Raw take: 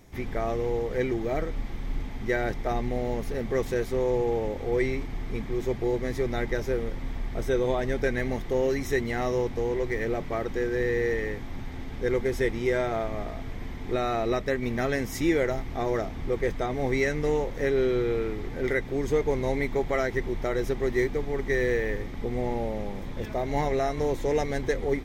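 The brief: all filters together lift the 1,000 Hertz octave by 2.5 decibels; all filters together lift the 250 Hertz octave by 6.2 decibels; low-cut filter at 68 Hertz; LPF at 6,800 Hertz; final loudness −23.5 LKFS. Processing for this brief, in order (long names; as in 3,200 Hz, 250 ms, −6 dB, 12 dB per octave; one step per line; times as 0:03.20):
high-pass filter 68 Hz
low-pass filter 6,800 Hz
parametric band 250 Hz +8 dB
parametric band 1,000 Hz +3 dB
level +2 dB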